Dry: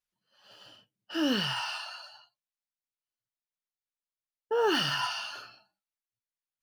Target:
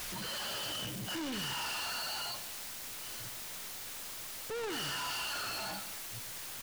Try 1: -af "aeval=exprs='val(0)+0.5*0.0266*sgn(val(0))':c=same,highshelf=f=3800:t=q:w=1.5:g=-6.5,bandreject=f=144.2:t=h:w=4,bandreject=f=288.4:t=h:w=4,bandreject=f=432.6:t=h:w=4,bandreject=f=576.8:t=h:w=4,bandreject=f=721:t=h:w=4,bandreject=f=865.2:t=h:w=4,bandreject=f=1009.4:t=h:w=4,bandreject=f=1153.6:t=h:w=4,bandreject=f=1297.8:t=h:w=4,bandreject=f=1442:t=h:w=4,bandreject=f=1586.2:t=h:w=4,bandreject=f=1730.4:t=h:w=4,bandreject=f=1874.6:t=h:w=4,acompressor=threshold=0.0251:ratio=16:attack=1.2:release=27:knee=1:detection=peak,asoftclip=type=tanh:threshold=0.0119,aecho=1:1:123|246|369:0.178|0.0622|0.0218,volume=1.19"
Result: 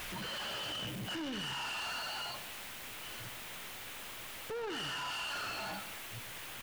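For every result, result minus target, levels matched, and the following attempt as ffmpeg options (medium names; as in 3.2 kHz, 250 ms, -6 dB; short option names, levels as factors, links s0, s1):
compression: peak gain reduction +13 dB; 8 kHz band -4.5 dB
-af "aeval=exprs='val(0)+0.5*0.0266*sgn(val(0))':c=same,highshelf=f=3800:t=q:w=1.5:g=-6.5,bandreject=f=144.2:t=h:w=4,bandreject=f=288.4:t=h:w=4,bandreject=f=432.6:t=h:w=4,bandreject=f=576.8:t=h:w=4,bandreject=f=721:t=h:w=4,bandreject=f=865.2:t=h:w=4,bandreject=f=1009.4:t=h:w=4,bandreject=f=1153.6:t=h:w=4,bandreject=f=1297.8:t=h:w=4,bandreject=f=1442:t=h:w=4,bandreject=f=1586.2:t=h:w=4,bandreject=f=1730.4:t=h:w=4,bandreject=f=1874.6:t=h:w=4,asoftclip=type=tanh:threshold=0.0119,aecho=1:1:123|246|369:0.178|0.0622|0.0218,volume=1.19"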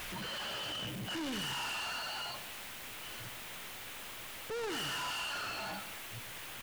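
8 kHz band -3.5 dB
-af "aeval=exprs='val(0)+0.5*0.0266*sgn(val(0))':c=same,bandreject=f=144.2:t=h:w=4,bandreject=f=288.4:t=h:w=4,bandreject=f=432.6:t=h:w=4,bandreject=f=576.8:t=h:w=4,bandreject=f=721:t=h:w=4,bandreject=f=865.2:t=h:w=4,bandreject=f=1009.4:t=h:w=4,bandreject=f=1153.6:t=h:w=4,bandreject=f=1297.8:t=h:w=4,bandreject=f=1442:t=h:w=4,bandreject=f=1586.2:t=h:w=4,bandreject=f=1730.4:t=h:w=4,bandreject=f=1874.6:t=h:w=4,asoftclip=type=tanh:threshold=0.0119,aecho=1:1:123|246|369:0.178|0.0622|0.0218,volume=1.19"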